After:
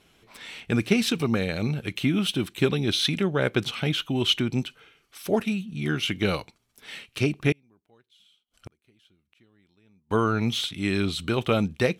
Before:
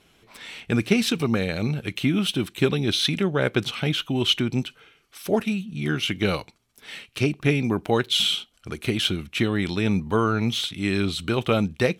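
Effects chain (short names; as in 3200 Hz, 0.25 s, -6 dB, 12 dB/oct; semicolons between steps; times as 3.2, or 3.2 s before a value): 7.52–10.11 flipped gate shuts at -27 dBFS, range -37 dB; gain -1.5 dB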